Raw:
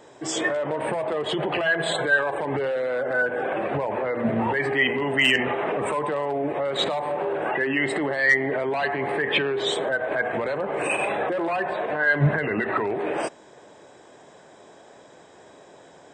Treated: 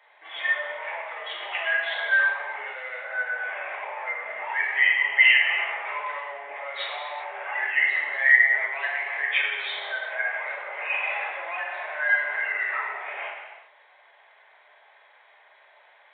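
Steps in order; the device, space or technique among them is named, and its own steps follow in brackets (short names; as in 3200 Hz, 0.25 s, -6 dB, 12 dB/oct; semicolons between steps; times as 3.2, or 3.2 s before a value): non-linear reverb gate 0.43 s falling, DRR -3.5 dB; musical greeting card (downsampling 8000 Hz; HPF 760 Hz 24 dB/oct; bell 2100 Hz +12 dB 0.43 oct); gain -9 dB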